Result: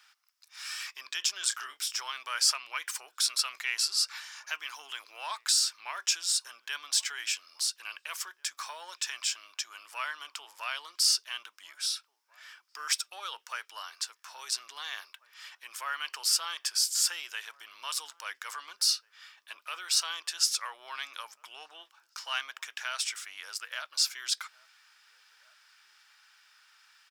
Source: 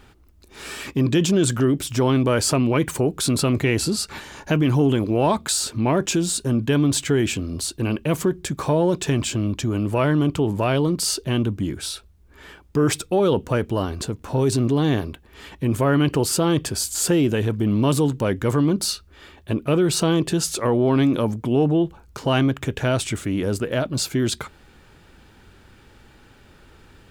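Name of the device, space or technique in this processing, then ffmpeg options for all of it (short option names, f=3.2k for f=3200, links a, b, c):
headphones lying on a table: -filter_complex "[0:a]asplit=3[a][b][c];[a]afade=t=out:st=1.41:d=0.02[d];[b]asplit=2[e][f];[f]adelay=27,volume=-8dB[g];[e][g]amix=inputs=2:normalize=0,afade=t=in:st=1.41:d=0.02,afade=t=out:st=1.99:d=0.02[h];[c]afade=t=in:st=1.99:d=0.02[i];[d][h][i]amix=inputs=3:normalize=0,highpass=f=1.2k:w=0.5412,highpass=f=1.2k:w=1.3066,equalizer=f=5.3k:t=o:w=0.33:g=11,asplit=2[j][k];[k]adelay=1691,volume=-23dB,highshelf=f=4k:g=-38[l];[j][l]amix=inputs=2:normalize=0,volume=-5.5dB"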